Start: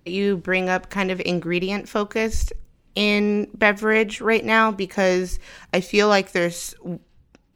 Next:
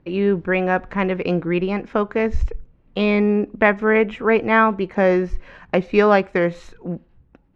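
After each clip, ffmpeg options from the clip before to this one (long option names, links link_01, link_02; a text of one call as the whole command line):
ffmpeg -i in.wav -af "lowpass=1800,volume=3dB" out.wav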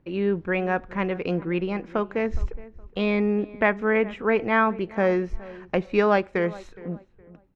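ffmpeg -i in.wav -filter_complex "[0:a]asplit=2[link_01][link_02];[link_02]adelay=416,lowpass=frequency=1800:poles=1,volume=-19dB,asplit=2[link_03][link_04];[link_04]adelay=416,lowpass=frequency=1800:poles=1,volume=0.3,asplit=2[link_05][link_06];[link_06]adelay=416,lowpass=frequency=1800:poles=1,volume=0.3[link_07];[link_01][link_03][link_05][link_07]amix=inputs=4:normalize=0,volume=-5.5dB" out.wav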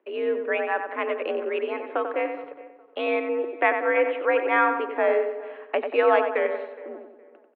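ffmpeg -i in.wav -filter_complex "[0:a]highpass=frequency=280:width_type=q:width=0.5412,highpass=frequency=280:width_type=q:width=1.307,lowpass=frequency=3300:width_type=q:width=0.5176,lowpass=frequency=3300:width_type=q:width=0.7071,lowpass=frequency=3300:width_type=q:width=1.932,afreqshift=62,asplit=2[link_01][link_02];[link_02]adelay=92,lowpass=frequency=2200:poles=1,volume=-6dB,asplit=2[link_03][link_04];[link_04]adelay=92,lowpass=frequency=2200:poles=1,volume=0.52,asplit=2[link_05][link_06];[link_06]adelay=92,lowpass=frequency=2200:poles=1,volume=0.52,asplit=2[link_07][link_08];[link_08]adelay=92,lowpass=frequency=2200:poles=1,volume=0.52,asplit=2[link_09][link_10];[link_10]adelay=92,lowpass=frequency=2200:poles=1,volume=0.52,asplit=2[link_11][link_12];[link_12]adelay=92,lowpass=frequency=2200:poles=1,volume=0.52[link_13];[link_01][link_03][link_05][link_07][link_09][link_11][link_13]amix=inputs=7:normalize=0" out.wav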